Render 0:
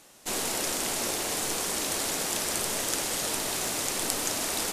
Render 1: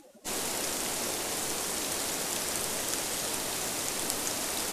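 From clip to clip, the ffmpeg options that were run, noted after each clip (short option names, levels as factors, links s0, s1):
-af "afftdn=nr=29:nf=-48,acompressor=mode=upward:threshold=0.02:ratio=2.5,volume=0.75"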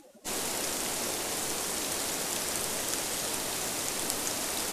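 -af anull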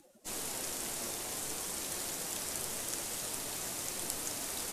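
-filter_complex "[0:a]acrossover=split=180|6500[s0][s1][s2];[s0]acrusher=samples=21:mix=1:aa=0.000001:lfo=1:lforange=21:lforate=0.7[s3];[s1]flanger=delay=5.5:depth=3.3:regen=69:speed=0.51:shape=sinusoidal[s4];[s3][s4][s2]amix=inputs=3:normalize=0,volume=0.631"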